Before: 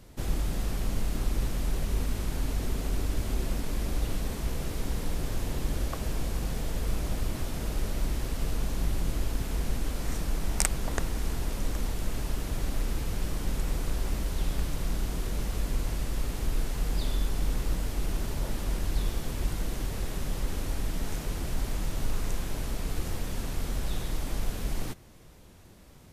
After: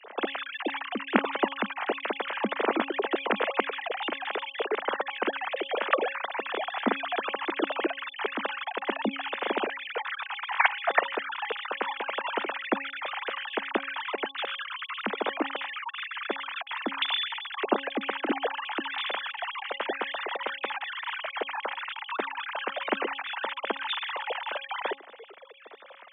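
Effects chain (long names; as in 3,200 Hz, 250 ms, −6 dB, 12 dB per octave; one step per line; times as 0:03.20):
three sine waves on the formant tracks
Butterworth high-pass 200 Hz 96 dB per octave
hum removal 274.5 Hz, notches 4
level −3.5 dB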